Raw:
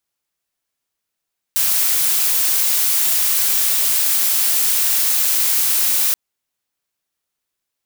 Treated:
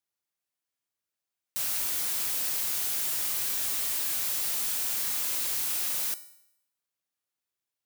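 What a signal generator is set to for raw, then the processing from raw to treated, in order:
noise blue, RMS −16.5 dBFS 4.58 s
high-pass filter 84 Hz
gain into a clipping stage and back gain 18 dB
tuned comb filter 110 Hz, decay 0.76 s, harmonics odd, mix 70%

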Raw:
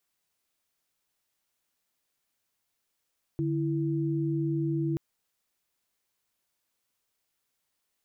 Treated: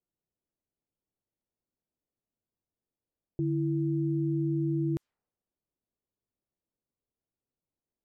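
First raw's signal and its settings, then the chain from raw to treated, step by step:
held notes D3/E4 sine, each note −28.5 dBFS 1.58 s
low-pass that shuts in the quiet parts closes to 440 Hz, open at −26.5 dBFS

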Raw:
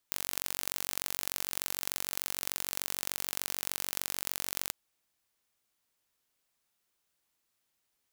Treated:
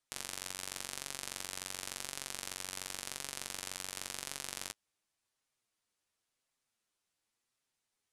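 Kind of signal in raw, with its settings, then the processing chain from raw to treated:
impulse train 46.7 per second, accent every 2, −5 dBFS 4.60 s
low-pass filter 11,000 Hz 24 dB per octave
flanger 0.92 Hz, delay 7.2 ms, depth 3.2 ms, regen +29%

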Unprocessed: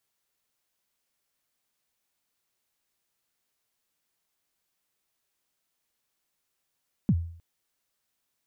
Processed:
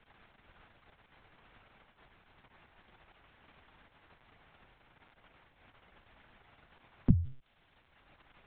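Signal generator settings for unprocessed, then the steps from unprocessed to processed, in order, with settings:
synth kick length 0.31 s, from 240 Hz, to 84 Hz, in 55 ms, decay 0.55 s, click off, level −16 dB
surface crackle 240 per second −50 dBFS
one-pitch LPC vocoder at 8 kHz 130 Hz
multiband upward and downward compressor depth 40%

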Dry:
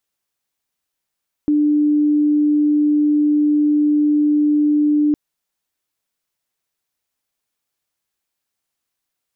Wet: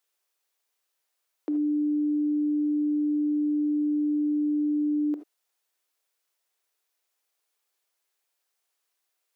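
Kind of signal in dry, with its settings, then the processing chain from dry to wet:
tone sine 297 Hz −12 dBFS 3.66 s
Butterworth high-pass 340 Hz 36 dB per octave
brickwall limiter −23.5 dBFS
reverb whose tail is shaped and stops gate 100 ms rising, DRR 8.5 dB

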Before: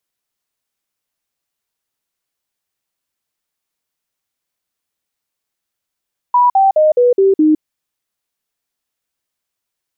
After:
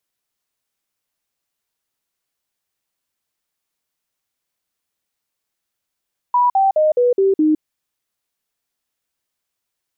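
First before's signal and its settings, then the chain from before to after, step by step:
stepped sweep 979 Hz down, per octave 3, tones 6, 0.16 s, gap 0.05 s −7 dBFS
brickwall limiter −11 dBFS

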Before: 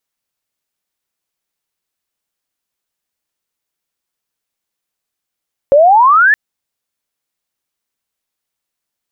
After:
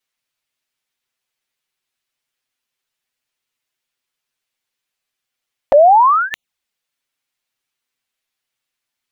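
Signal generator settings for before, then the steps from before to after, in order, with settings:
glide logarithmic 540 Hz → 1,800 Hz −3.5 dBFS → −5.5 dBFS 0.62 s
parametric band 2,600 Hz +7.5 dB 2 octaves
flanger swept by the level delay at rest 7.8 ms, full sweep at −6 dBFS

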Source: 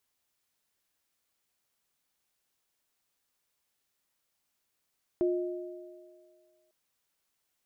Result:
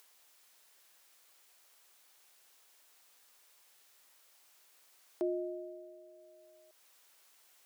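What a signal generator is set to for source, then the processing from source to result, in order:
inharmonic partials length 1.50 s, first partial 355 Hz, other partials 626 Hz, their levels −11 dB, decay 1.68 s, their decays 2.41 s, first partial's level −23 dB
high-pass filter 450 Hz 12 dB per octave
upward compression, threshold −51 dBFS

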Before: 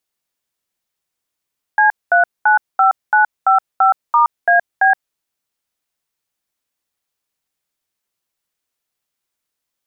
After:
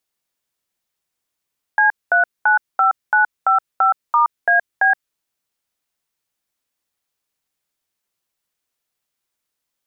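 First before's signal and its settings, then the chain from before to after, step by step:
touch tones "C395955*AB", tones 121 ms, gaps 216 ms, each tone −11 dBFS
dynamic equaliser 730 Hz, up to −6 dB, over −27 dBFS, Q 1.6

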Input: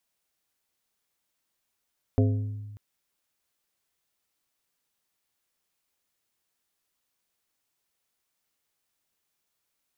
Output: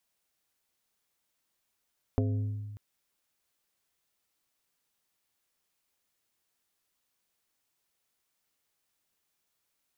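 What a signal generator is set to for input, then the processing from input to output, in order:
struck glass plate, length 0.59 s, lowest mode 104 Hz, decay 1.49 s, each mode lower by 4 dB, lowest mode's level −18 dB
downward compressor, threshold −25 dBFS

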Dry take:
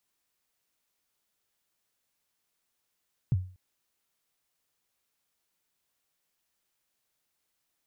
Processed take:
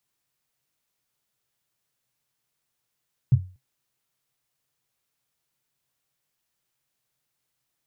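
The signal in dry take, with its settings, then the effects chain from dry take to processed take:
synth kick length 0.24 s, from 150 Hz, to 92 Hz, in 33 ms, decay 0.39 s, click off, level −18.5 dB
parametric band 130 Hz +13 dB 0.4 octaves

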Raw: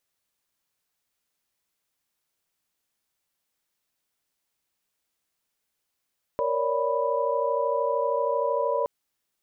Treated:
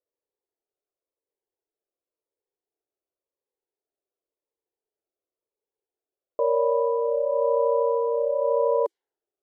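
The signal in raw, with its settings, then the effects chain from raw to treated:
held notes A#4/C#5/D5/B5 sine, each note −28 dBFS 2.47 s
low-pass that shuts in the quiet parts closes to 570 Hz, open at −22 dBFS
low shelf with overshoot 280 Hz −13 dB, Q 3
phaser whose notches keep moving one way falling 0.93 Hz

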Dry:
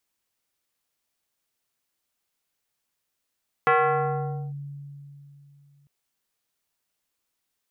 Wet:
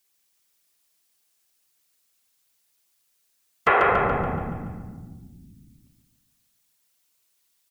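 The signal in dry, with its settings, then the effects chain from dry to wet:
two-operator FM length 2.20 s, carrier 142 Hz, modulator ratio 4.33, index 2.7, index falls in 0.86 s linear, decay 3.12 s, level −15 dB
high-shelf EQ 2,600 Hz +10 dB
random phases in short frames
on a send: repeating echo 142 ms, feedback 52%, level −5 dB

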